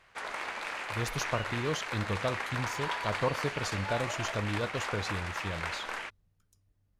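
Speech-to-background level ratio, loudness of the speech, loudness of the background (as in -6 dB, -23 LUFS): 0.5 dB, -35.5 LUFS, -36.0 LUFS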